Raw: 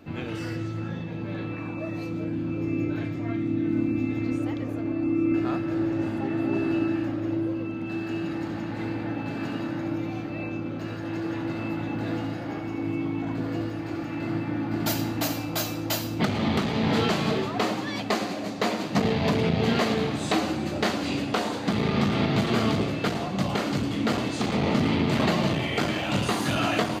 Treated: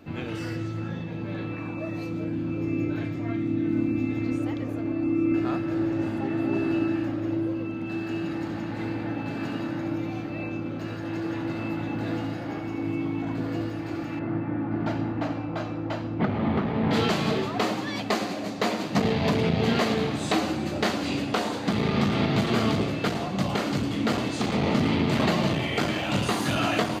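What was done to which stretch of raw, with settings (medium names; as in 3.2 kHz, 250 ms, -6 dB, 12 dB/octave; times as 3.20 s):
14.19–16.91 s: low-pass 1.7 kHz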